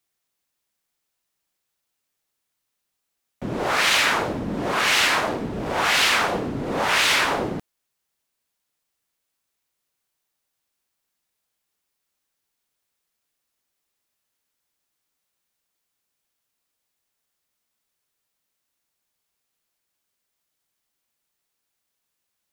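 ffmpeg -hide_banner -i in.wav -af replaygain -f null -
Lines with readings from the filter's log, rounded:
track_gain = +3.0 dB
track_peak = 0.392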